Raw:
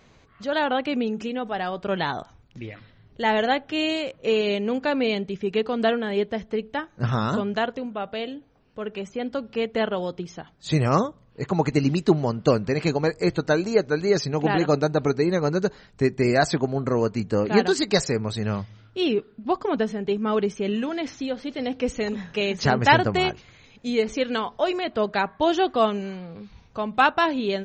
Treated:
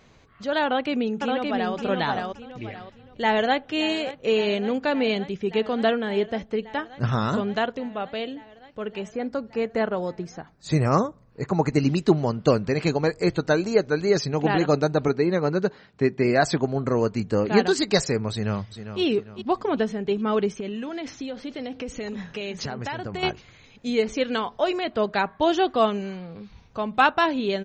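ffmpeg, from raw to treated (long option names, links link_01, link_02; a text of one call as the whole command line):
ffmpeg -i in.wav -filter_complex "[0:a]asplit=2[link_01][link_02];[link_02]afade=type=in:start_time=0.64:duration=0.01,afade=type=out:start_time=1.75:duration=0.01,aecho=0:1:570|1140|1710|2280:0.707946|0.212384|0.0637151|0.0191145[link_03];[link_01][link_03]amix=inputs=2:normalize=0,asplit=2[link_04][link_05];[link_05]afade=type=in:start_time=2.7:duration=0.01,afade=type=out:start_time=3.62:duration=0.01,aecho=0:1:570|1140|1710|2280|2850|3420|3990|4560|5130|5700|6270|6840:0.158489|0.134716|0.114509|0.0973323|0.0827324|0.0703226|0.0597742|0.050808|0.0431868|0.0367088|0.0312025|0.0265221[link_06];[link_04][link_06]amix=inputs=2:normalize=0,asettb=1/sr,asplit=3[link_07][link_08][link_09];[link_07]atrim=end=9.134[link_10];[link_08]atrim=start=9.13:end=11.78,asetpts=PTS-STARTPTS,afade=type=in:duration=0.004:curve=qsin,afade=type=out:start_time=2.646:duration=0.004:curve=qsin,equalizer=frequency=3200:width_type=o:width=0.39:gain=-13.5[link_11];[link_09]atrim=start=11.776[link_12];[link_10][link_11]acrossfade=duration=0.004:curve1=hsin:curve2=qsin[link_13];[link_13][link_12]acrossfade=duration=0.004:curve1=qsin:curve2=hsin,asettb=1/sr,asplit=3[link_14][link_15][link_16];[link_14]atrim=end=15.084[link_17];[link_15]atrim=start=15.08:end=16.45,asetpts=PTS-STARTPTS,afade=type=in:duration=0.004:curve=qsin,afade=type=out:start_time=1.366:duration=0.004:curve=qsin,highpass=120,lowpass=4200[link_18];[link_16]atrim=start=16.446[link_19];[link_17][link_18]acrossfade=duration=0.004:curve1=hsin:curve2=qsin[link_20];[link_20][link_19]acrossfade=duration=0.004:curve1=qsin:curve2=hsin,asplit=2[link_21][link_22];[link_22]afade=type=in:start_time=18.31:duration=0.01,afade=type=out:start_time=19.01:duration=0.01,aecho=0:1:400|800|1200|1600:0.316228|0.126491|0.0505964|0.0202386[link_23];[link_21][link_23]amix=inputs=2:normalize=0,asettb=1/sr,asplit=3[link_24][link_25][link_26];[link_24]atrim=end=20.604[link_27];[link_25]atrim=start=20.6:end=23.23,asetpts=PTS-STARTPTS,afade=type=in:duration=0.004:curve=qsin,afade=type=out:start_time=2.626:duration=0.004:curve=qsin,acompressor=threshold=-28dB:ratio=6:attack=3.2:release=140:knee=1:detection=peak[link_28];[link_26]atrim=start=23.226[link_29];[link_27][link_28]acrossfade=duration=0.004:curve1=hsin:curve2=qsin[link_30];[link_30][link_29]acrossfade=duration=0.004:curve1=qsin:curve2=hsin" out.wav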